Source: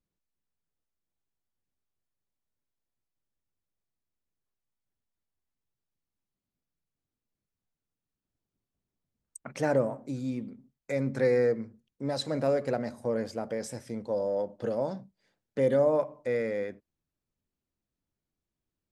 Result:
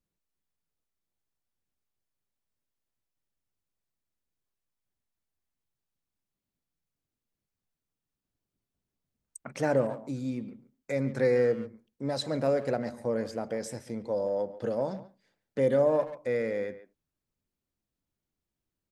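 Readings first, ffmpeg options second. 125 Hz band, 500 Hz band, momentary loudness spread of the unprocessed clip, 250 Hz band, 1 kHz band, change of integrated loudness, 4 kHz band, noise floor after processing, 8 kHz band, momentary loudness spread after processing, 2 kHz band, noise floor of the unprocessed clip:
0.0 dB, 0.0 dB, 14 LU, 0.0 dB, 0.0 dB, 0.0 dB, 0.0 dB, under -85 dBFS, 0.0 dB, 14 LU, 0.0 dB, under -85 dBFS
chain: -filter_complex "[0:a]asplit=2[a][b];[b]adelay=140,highpass=300,lowpass=3.4k,asoftclip=type=hard:threshold=-23.5dB,volume=-14dB[c];[a][c]amix=inputs=2:normalize=0"

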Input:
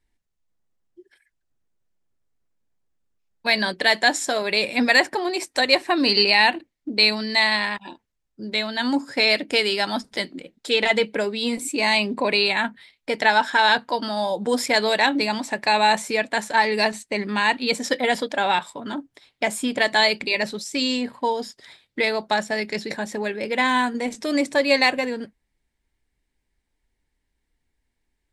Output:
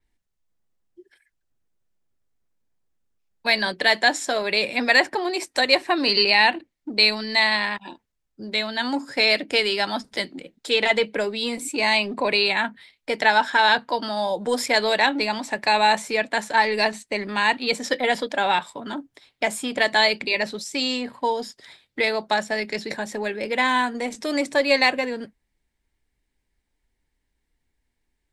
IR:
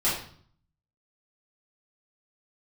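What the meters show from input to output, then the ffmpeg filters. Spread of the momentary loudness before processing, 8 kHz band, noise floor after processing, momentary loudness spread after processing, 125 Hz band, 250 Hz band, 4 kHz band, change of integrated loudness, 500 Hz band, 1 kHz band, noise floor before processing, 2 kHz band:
11 LU, -2.0 dB, -77 dBFS, 11 LU, n/a, -3.0 dB, -0.5 dB, -0.5 dB, -0.5 dB, 0.0 dB, -77 dBFS, 0.0 dB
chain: -filter_complex "[0:a]acrossover=split=300[a][b];[a]asoftclip=type=tanh:threshold=-34dB[c];[c][b]amix=inputs=2:normalize=0,adynamicequalizer=threshold=0.0158:dfrequency=5900:dqfactor=0.7:tfrequency=5900:tqfactor=0.7:attack=5:release=100:ratio=0.375:range=3:mode=cutabove:tftype=highshelf"

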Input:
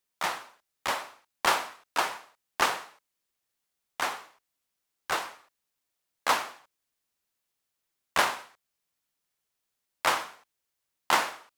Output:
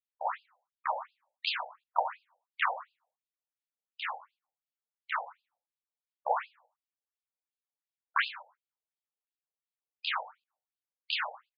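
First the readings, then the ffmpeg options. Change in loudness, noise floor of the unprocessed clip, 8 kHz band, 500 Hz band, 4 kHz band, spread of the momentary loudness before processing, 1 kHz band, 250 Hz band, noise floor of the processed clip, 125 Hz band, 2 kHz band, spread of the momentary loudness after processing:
-5.5 dB, -83 dBFS, under -40 dB, -5.5 dB, -4.5 dB, 16 LU, -5.0 dB, under -40 dB, under -85 dBFS, under -40 dB, -5.0 dB, 17 LU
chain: -filter_complex "[0:a]afftdn=nr=14:nf=-42,equalizer=f=850:t=o:w=1.4:g=2.5,asplit=2[a][b];[b]adelay=85,lowpass=f=830:p=1,volume=-18.5dB,asplit=2[c][d];[d]adelay=85,lowpass=f=830:p=1,volume=0.45,asplit=2[e][f];[f]adelay=85,lowpass=f=830:p=1,volume=0.45,asplit=2[g][h];[h]adelay=85,lowpass=f=830:p=1,volume=0.45[i];[a][c][e][g][i]amix=inputs=5:normalize=0,aeval=exprs='val(0)+0.00251*(sin(2*PI*50*n/s)+sin(2*PI*2*50*n/s)/2+sin(2*PI*3*50*n/s)/3+sin(2*PI*4*50*n/s)/4+sin(2*PI*5*50*n/s)/5)':c=same,afftfilt=real='re*between(b*sr/1024,620*pow(3600/620,0.5+0.5*sin(2*PI*2.8*pts/sr))/1.41,620*pow(3600/620,0.5+0.5*sin(2*PI*2.8*pts/sr))*1.41)':imag='im*between(b*sr/1024,620*pow(3600/620,0.5+0.5*sin(2*PI*2.8*pts/sr))/1.41,620*pow(3600/620,0.5+0.5*sin(2*PI*2.8*pts/sr))*1.41)':win_size=1024:overlap=0.75"

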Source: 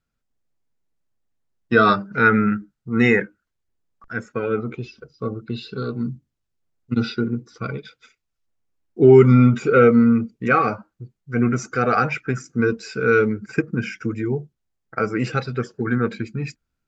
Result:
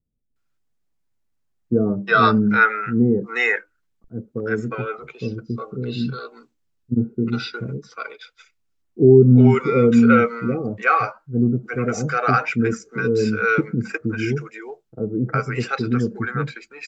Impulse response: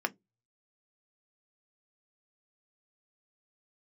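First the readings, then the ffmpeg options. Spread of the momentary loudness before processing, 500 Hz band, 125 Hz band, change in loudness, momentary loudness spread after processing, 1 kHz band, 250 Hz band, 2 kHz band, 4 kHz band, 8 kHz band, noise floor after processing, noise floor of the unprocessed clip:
17 LU, -1.0 dB, +1.5 dB, 0.0 dB, 17 LU, +1.0 dB, +1.0 dB, +1.5 dB, +1.5 dB, n/a, -70 dBFS, -79 dBFS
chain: -filter_complex "[0:a]acrossover=split=510[a][b];[b]adelay=360[c];[a][c]amix=inputs=2:normalize=0,volume=1.5dB"

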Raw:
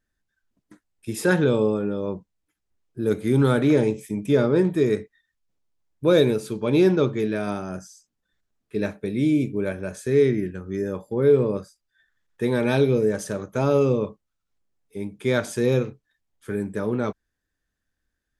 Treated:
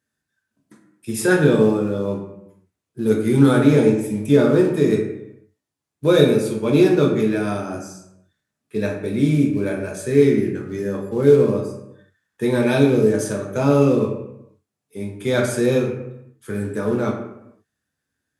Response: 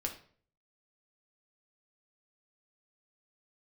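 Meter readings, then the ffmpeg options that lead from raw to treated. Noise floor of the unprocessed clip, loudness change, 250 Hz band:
-80 dBFS, +4.5 dB, +5.0 dB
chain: -filter_complex "[0:a]highpass=f=87:w=0.5412,highpass=f=87:w=1.3066,highshelf=f=8.9k:g=7.5,asplit=2[a][b];[b]acrusher=bits=4:mode=log:mix=0:aa=0.000001,volume=-10dB[c];[a][c]amix=inputs=2:normalize=0[d];[1:a]atrim=start_sample=2205,afade=t=out:st=0.32:d=0.01,atrim=end_sample=14553,asetrate=22932,aresample=44100[e];[d][e]afir=irnorm=-1:irlink=0,volume=-4dB"

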